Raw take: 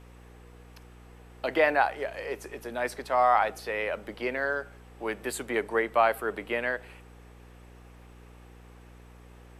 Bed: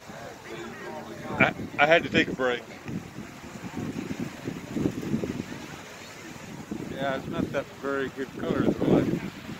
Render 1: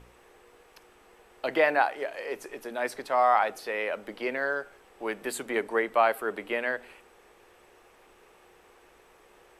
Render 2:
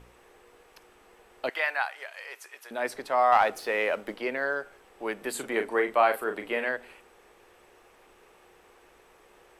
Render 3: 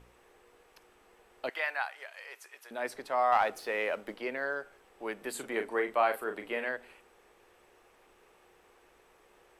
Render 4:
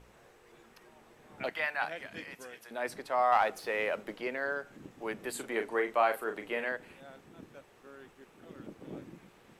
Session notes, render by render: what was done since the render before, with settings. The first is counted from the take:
hum removal 60 Hz, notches 5
0:01.49–0:02.71: high-pass filter 1,200 Hz; 0:03.32–0:04.16: leveller curve on the samples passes 1; 0:05.31–0:06.69: double-tracking delay 38 ms −7.5 dB
level −5 dB
mix in bed −23 dB

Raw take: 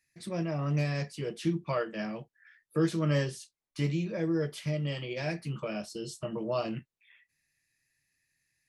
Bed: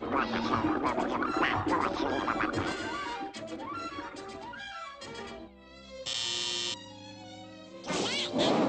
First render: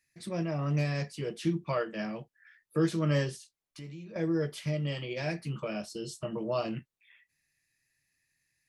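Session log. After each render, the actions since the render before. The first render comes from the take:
0:03.36–0:04.16: downward compressor 2.5 to 1, threshold −48 dBFS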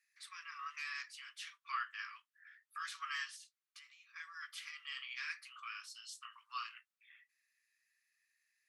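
Butterworth high-pass 1,100 Hz 96 dB per octave
spectral tilt −2 dB per octave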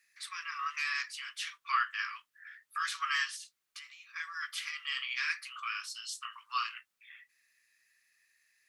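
level +9.5 dB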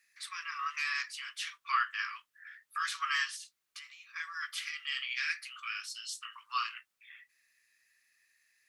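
0:04.64–0:06.35: high-pass filter 1,400 Hz 24 dB per octave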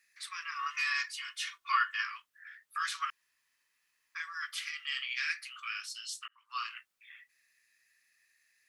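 0:00.55–0:02.03: comb filter 2.8 ms
0:03.10–0:04.15: fill with room tone
0:06.28–0:06.77: fade in

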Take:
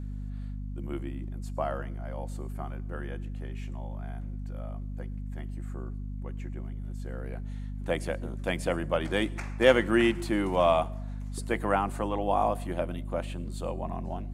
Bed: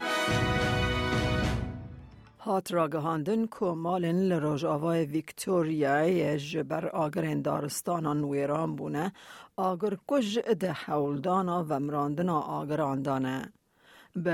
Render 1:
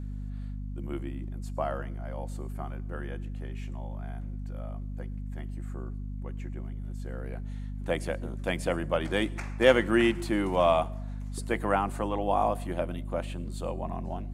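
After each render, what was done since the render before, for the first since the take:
no processing that can be heard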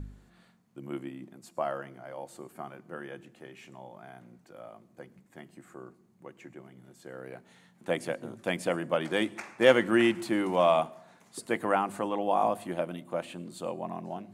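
hum removal 50 Hz, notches 5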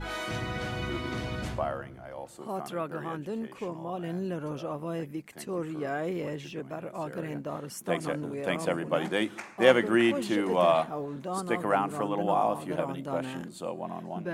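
mix in bed −6.5 dB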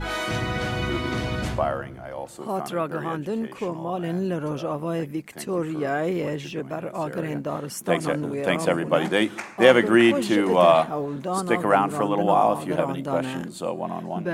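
level +7 dB
brickwall limiter −2 dBFS, peak gain reduction 3 dB

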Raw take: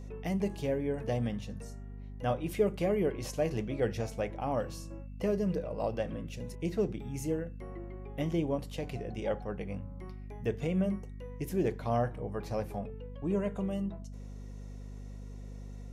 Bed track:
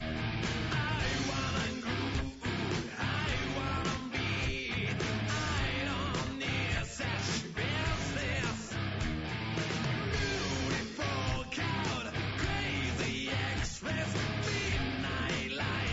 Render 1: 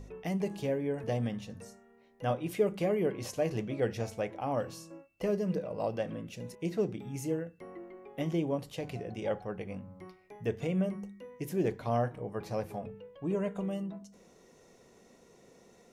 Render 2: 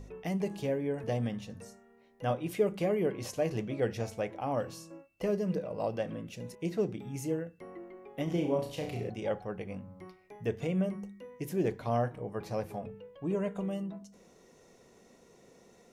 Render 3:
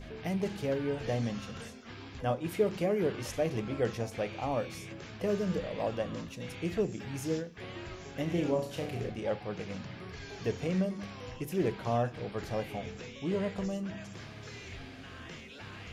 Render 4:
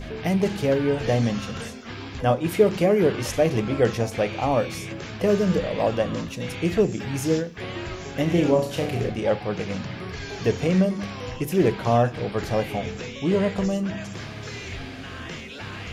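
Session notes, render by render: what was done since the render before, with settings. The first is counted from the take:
hum removal 50 Hz, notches 5
0:08.24–0:09.10: flutter between parallel walls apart 5.8 metres, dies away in 0.48 s
mix in bed track −12.5 dB
level +10.5 dB

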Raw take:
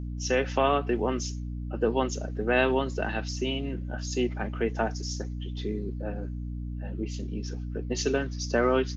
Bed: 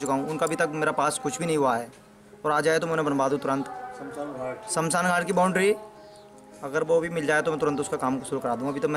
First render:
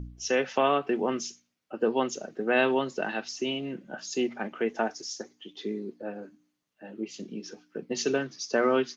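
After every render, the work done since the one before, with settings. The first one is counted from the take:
hum removal 60 Hz, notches 5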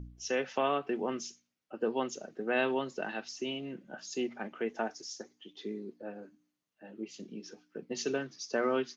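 level −6 dB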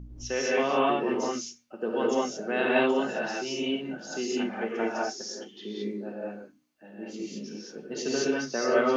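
reverb whose tail is shaped and stops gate 240 ms rising, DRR −6 dB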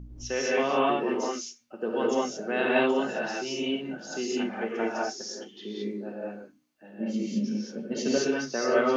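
0:00.97–0:01.60: high-pass filter 110 Hz → 460 Hz
0:07.00–0:08.18: hollow resonant body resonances 220/560/2,200/3,100 Hz, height 15 dB, ringing for 95 ms

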